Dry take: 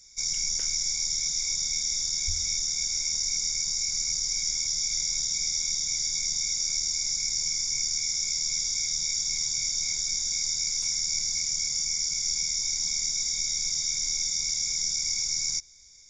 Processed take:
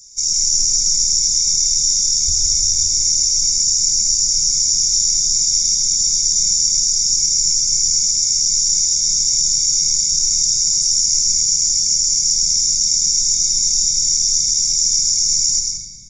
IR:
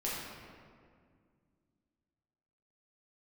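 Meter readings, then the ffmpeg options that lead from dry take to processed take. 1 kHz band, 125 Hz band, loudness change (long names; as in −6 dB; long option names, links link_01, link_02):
can't be measured, +10.5 dB, +12.5 dB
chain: -filter_complex "[0:a]firequalizer=gain_entry='entry(230,0);entry(460,-6);entry(670,-26);entry(5900,6)':delay=0.05:min_phase=1,asplit=2[link_01][link_02];[1:a]atrim=start_sample=2205,asetrate=37485,aresample=44100,adelay=106[link_03];[link_02][link_03]afir=irnorm=-1:irlink=0,volume=-5dB[link_04];[link_01][link_04]amix=inputs=2:normalize=0,volume=6dB"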